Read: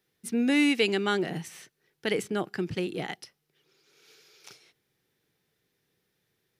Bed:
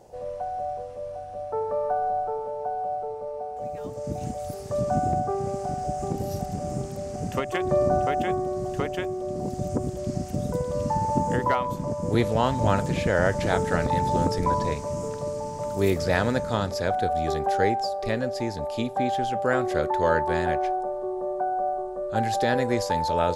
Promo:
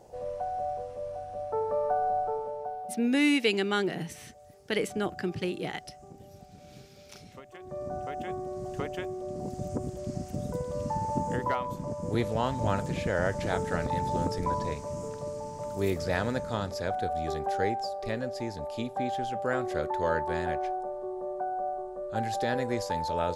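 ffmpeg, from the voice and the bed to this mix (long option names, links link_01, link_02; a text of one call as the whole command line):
ffmpeg -i stem1.wav -i stem2.wav -filter_complex "[0:a]adelay=2650,volume=-1dB[link_01];[1:a]volume=12.5dB,afade=type=out:start_time=2.33:duration=0.77:silence=0.11885,afade=type=in:start_time=7.58:duration=1.27:silence=0.188365[link_02];[link_01][link_02]amix=inputs=2:normalize=0" out.wav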